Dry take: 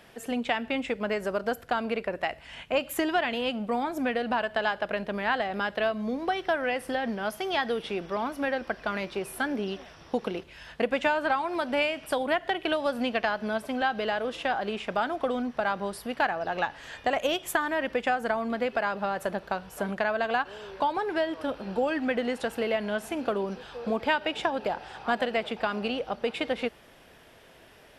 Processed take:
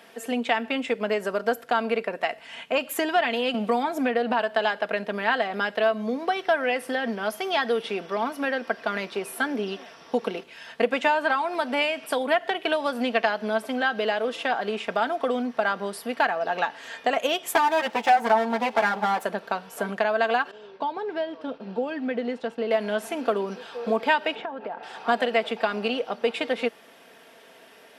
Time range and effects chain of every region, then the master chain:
0:03.54–0:04.39: high-shelf EQ 4,500 Hz −5 dB + multiband upward and downward compressor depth 70%
0:17.54–0:19.23: lower of the sound and its delayed copy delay 9.2 ms + parametric band 830 Hz +12 dB 0.32 octaves
0:20.51–0:22.71: low-pass filter 4,700 Hz + downward expander −40 dBFS + drawn EQ curve 170 Hz 0 dB, 1,800 Hz −9 dB, 3,500 Hz −6 dB
0:24.35–0:24.83: low-pass filter 2,000 Hz + downward compressor 2.5 to 1, threshold −36 dBFS
whole clip: high-pass filter 250 Hz 12 dB per octave; comb filter 4.4 ms, depth 40%; level +3 dB

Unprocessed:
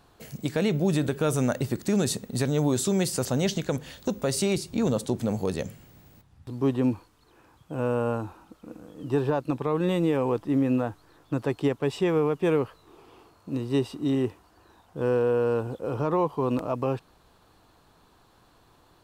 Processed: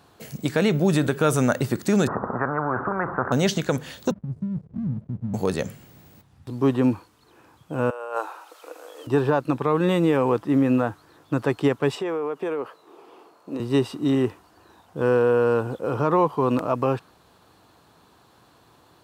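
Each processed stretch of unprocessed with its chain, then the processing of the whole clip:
0:02.07–0:03.32: mu-law and A-law mismatch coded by mu + Butterworth low-pass 1,300 Hz 48 dB per octave + every bin compressed towards the loudest bin 4 to 1
0:04.11–0:05.34: inverse Chebyshev low-pass filter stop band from 510 Hz, stop band 50 dB + slack as between gear wheels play −43.5 dBFS
0:07.90–0:09.07: inverse Chebyshev high-pass filter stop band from 230 Hz + compressor whose output falls as the input rises −34 dBFS, ratio −0.5 + one half of a high-frequency compander encoder only
0:11.95–0:13.60: high-pass filter 390 Hz + downward compressor 5 to 1, threshold −32 dBFS + tilt shelving filter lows +4.5 dB, about 1,200 Hz
whole clip: high-pass filter 88 Hz; dynamic equaliser 1,400 Hz, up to +5 dB, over −47 dBFS, Q 1.4; level +4 dB

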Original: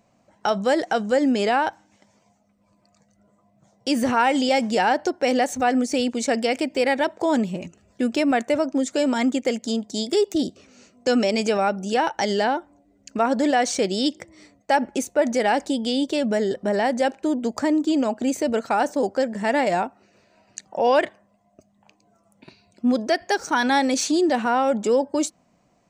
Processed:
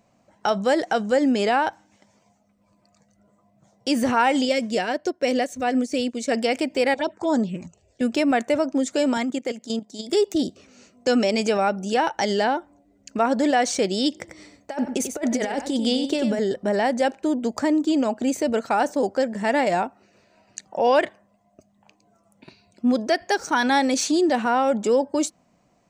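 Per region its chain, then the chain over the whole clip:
0:04.45–0:06.32: Butterworth band-reject 840 Hz, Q 4.1 + parametric band 1,300 Hz −4.5 dB 0.76 octaves + expander for the loud parts, over −39 dBFS
0:06.94–0:08.01: Butterworth low-pass 8,800 Hz 72 dB per octave + phaser swept by the level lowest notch 160 Hz, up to 2,600 Hz, full sweep at −16.5 dBFS
0:09.17–0:10.10: output level in coarse steps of 12 dB + high-pass filter 140 Hz
0:14.12–0:16.39: compressor whose output falls as the input rises −23 dBFS, ratio −0.5 + single-tap delay 93 ms −8 dB
whole clip: no processing

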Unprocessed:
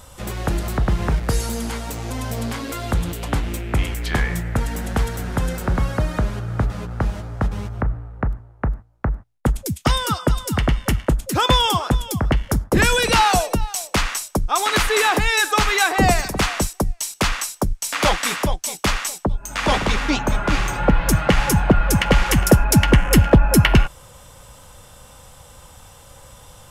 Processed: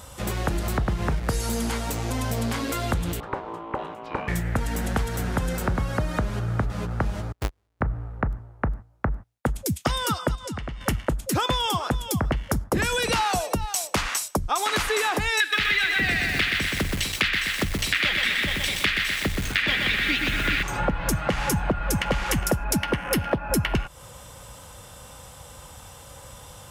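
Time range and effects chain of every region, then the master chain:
0:03.20–0:04.28: resonant band-pass 400 Hz, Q 0.87 + ring modulation 680 Hz
0:07.32–0:07.81: each half-wave held at its own peak + noise gate −14 dBFS, range −48 dB + parametric band 180 Hz −9.5 dB 1.1 octaves
0:10.35–0:10.81: low-pass filter 7,600 Hz + downward compressor 8 to 1, threshold −30 dBFS
0:15.40–0:20.63: drawn EQ curve 320 Hz 0 dB, 960 Hz −11 dB, 1,800 Hz +13 dB, 3,800 Hz +10 dB, 6,300 Hz −7 dB + feedback echo at a low word length 124 ms, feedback 55%, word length 5 bits, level −4 dB
0:22.77–0:23.50: high-pass filter 180 Hz 6 dB per octave + parametric band 7,200 Hz −12.5 dB 0.22 octaves
whole clip: high-pass filter 44 Hz; downward compressor 6 to 1, threshold −22 dBFS; level +1 dB

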